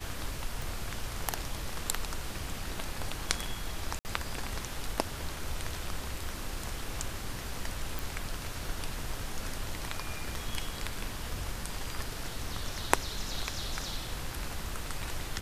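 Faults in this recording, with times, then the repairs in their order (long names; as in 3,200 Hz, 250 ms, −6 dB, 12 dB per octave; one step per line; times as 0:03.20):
0:00.62: click
0:03.99–0:04.05: drop-out 59 ms
0:07.99: click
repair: click removal
repair the gap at 0:03.99, 59 ms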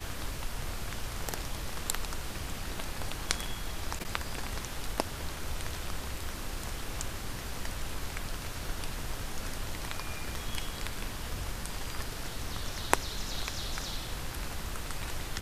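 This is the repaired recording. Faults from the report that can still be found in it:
none of them is left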